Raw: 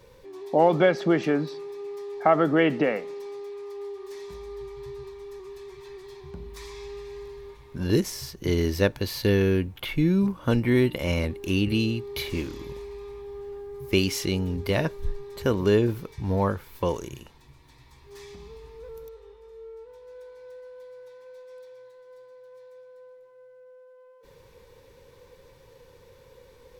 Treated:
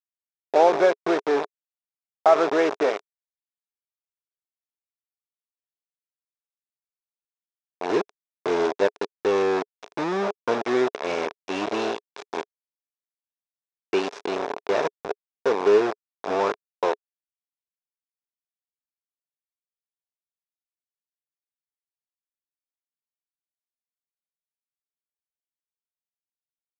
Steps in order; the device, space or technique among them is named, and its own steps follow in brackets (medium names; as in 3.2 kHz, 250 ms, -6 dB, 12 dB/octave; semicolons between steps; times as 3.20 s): hand-held game console (bit crusher 4-bit; cabinet simulation 420–4800 Hz, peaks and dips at 420 Hz +8 dB, 680 Hz +5 dB, 990 Hz +3 dB, 2 kHz -5 dB, 3 kHz -9 dB, 4.4 kHz -9 dB)